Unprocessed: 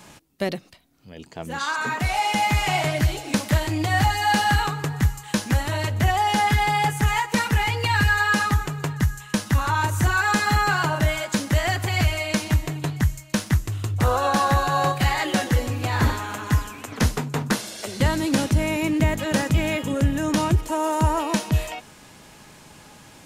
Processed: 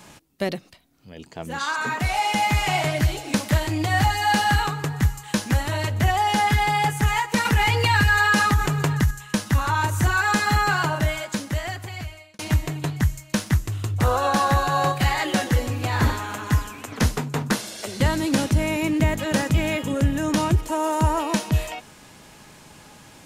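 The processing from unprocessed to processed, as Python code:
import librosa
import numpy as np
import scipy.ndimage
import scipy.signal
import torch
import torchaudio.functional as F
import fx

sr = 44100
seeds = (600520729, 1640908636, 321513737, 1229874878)

y = fx.env_flatten(x, sr, amount_pct=50, at=(7.45, 9.11))
y = fx.edit(y, sr, fx.fade_out_span(start_s=10.8, length_s=1.59), tone=tone)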